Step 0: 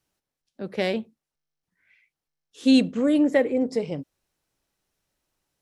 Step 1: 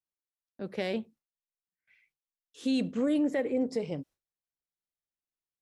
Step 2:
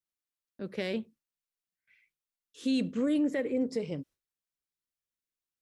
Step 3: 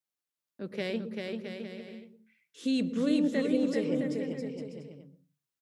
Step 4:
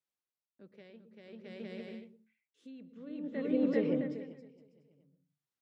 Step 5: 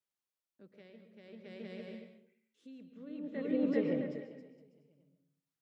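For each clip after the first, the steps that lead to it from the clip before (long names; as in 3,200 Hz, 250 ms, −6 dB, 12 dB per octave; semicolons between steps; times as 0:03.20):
noise gate with hold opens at −56 dBFS; brickwall limiter −16.5 dBFS, peak gain reduction 7.5 dB; level −4.5 dB
parametric band 760 Hz −7.5 dB 0.61 octaves
high-pass filter 110 Hz; bouncing-ball delay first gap 390 ms, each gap 0.7×, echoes 5; on a send at −17 dB: convolution reverb RT60 0.30 s, pre-delay 110 ms
high-shelf EQ 4,600 Hz −7 dB; treble cut that deepens with the level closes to 2,600 Hz, closed at −24.5 dBFS; tremolo with a sine in dB 0.53 Hz, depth 22 dB
comb and all-pass reverb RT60 0.52 s, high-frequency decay 0.6×, pre-delay 95 ms, DRR 8.5 dB; level −2 dB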